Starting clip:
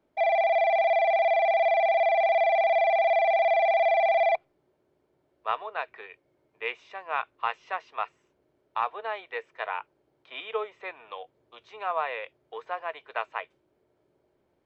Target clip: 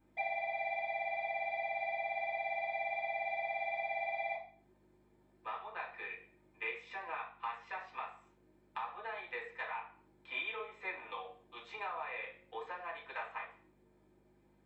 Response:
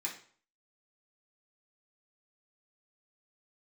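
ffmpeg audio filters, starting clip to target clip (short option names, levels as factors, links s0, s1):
-filter_complex "[0:a]acompressor=threshold=0.0112:ratio=5,aeval=exprs='val(0)+0.000631*(sin(2*PI*50*n/s)+sin(2*PI*2*50*n/s)/2+sin(2*PI*3*50*n/s)/3+sin(2*PI*4*50*n/s)/4+sin(2*PI*5*50*n/s)/5)':c=same[s0];[1:a]atrim=start_sample=2205[s1];[s0][s1]afir=irnorm=-1:irlink=0"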